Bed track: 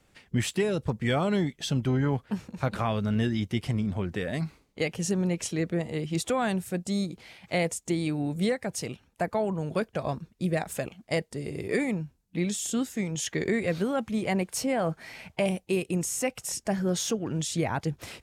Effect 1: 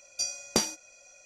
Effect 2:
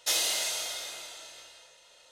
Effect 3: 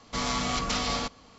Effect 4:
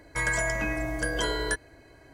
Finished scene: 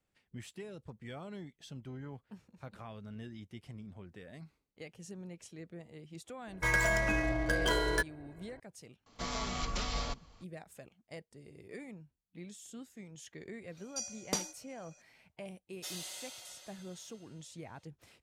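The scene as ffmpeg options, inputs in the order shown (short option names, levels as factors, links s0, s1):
-filter_complex "[0:a]volume=0.106[s0];[4:a]adynamicsmooth=sensitivity=8:basefreq=1700[s1];[3:a]asubboost=boost=11.5:cutoff=91[s2];[1:a]aecho=1:1:6.7:0.39[s3];[2:a]aecho=1:1:5.4:0.67[s4];[s1]atrim=end=2.13,asetpts=PTS-STARTPTS,volume=0.841,afade=t=in:d=0.004:c=hsin,afade=t=out:st=2.126:d=0.004:c=hsin,adelay=6470[s5];[s2]atrim=end=1.38,asetpts=PTS-STARTPTS,volume=0.355,afade=t=in:d=0.004:c=hsin,afade=t=out:st=1.376:d=0.004:c=hsin,adelay=399546S[s6];[s3]atrim=end=1.25,asetpts=PTS-STARTPTS,volume=0.376,afade=t=in:d=0.004:c=hsin,afade=t=out:st=1.246:d=0.004:c=hsin,adelay=13770[s7];[s4]atrim=end=2.11,asetpts=PTS-STARTPTS,volume=0.133,afade=t=in:d=0.004:c=hsin,afade=t=out:st=2.106:d=0.004:c=hsin,adelay=15760[s8];[s0][s5][s6][s7][s8]amix=inputs=5:normalize=0"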